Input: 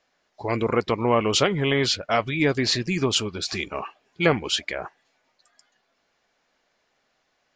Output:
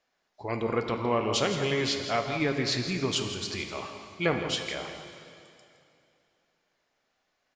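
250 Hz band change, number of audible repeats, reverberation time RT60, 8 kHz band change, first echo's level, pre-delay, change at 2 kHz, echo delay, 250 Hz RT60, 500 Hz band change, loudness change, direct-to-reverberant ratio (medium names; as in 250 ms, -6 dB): -5.5 dB, 1, 2.6 s, -6.0 dB, -11.0 dB, 6 ms, -5.5 dB, 165 ms, 2.7 s, -5.5 dB, -5.5 dB, 4.0 dB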